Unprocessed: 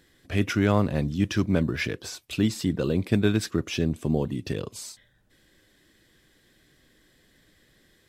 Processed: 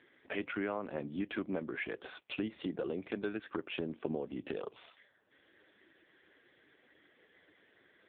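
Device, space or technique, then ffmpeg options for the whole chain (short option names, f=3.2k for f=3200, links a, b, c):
voicemail: -af "highpass=370,lowpass=2.8k,acompressor=threshold=-38dB:ratio=6,volume=5dB" -ar 8000 -c:a libopencore_amrnb -b:a 5150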